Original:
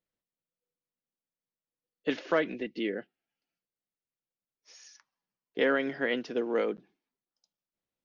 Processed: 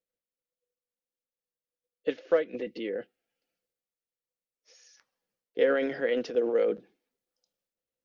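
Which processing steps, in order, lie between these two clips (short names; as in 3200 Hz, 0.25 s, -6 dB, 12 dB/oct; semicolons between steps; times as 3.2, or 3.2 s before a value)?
thirty-one-band EQ 160 Hz -5 dB, 500 Hz +12 dB, 1000 Hz -6 dB; transient shaper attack +2 dB, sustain -5 dB, from 2.53 s sustain +9 dB; gain -5.5 dB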